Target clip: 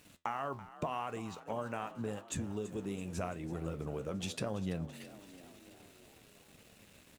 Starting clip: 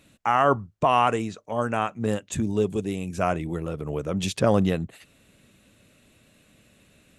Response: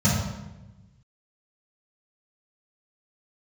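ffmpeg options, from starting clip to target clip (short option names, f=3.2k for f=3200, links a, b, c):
-filter_complex "[0:a]acompressor=threshold=-35dB:ratio=6,aeval=exprs='val(0)*gte(abs(val(0)),0.0015)':c=same,flanger=delay=9.1:depth=7:regen=71:speed=0.88:shape=triangular,asplit=2[a][b];[b]asplit=6[c][d][e][f][g][h];[c]adelay=333,afreqshift=45,volume=-15.5dB[i];[d]adelay=666,afreqshift=90,volume=-19.7dB[j];[e]adelay=999,afreqshift=135,volume=-23.8dB[k];[f]adelay=1332,afreqshift=180,volume=-28dB[l];[g]adelay=1665,afreqshift=225,volume=-32.1dB[m];[h]adelay=1998,afreqshift=270,volume=-36.3dB[n];[i][j][k][l][m][n]amix=inputs=6:normalize=0[o];[a][o]amix=inputs=2:normalize=0,volume=3.5dB"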